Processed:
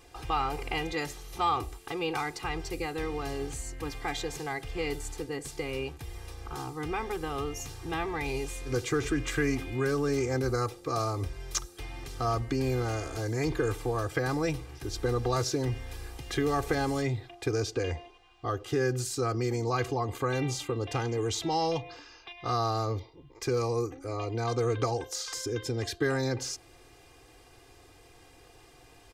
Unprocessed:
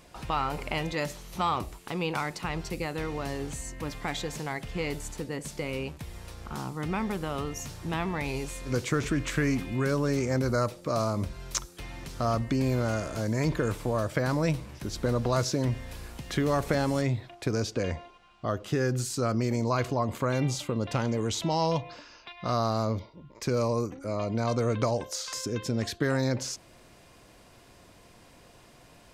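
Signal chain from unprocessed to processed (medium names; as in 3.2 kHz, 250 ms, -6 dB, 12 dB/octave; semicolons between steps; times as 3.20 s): comb 2.5 ms, depth 96%; trim -3.5 dB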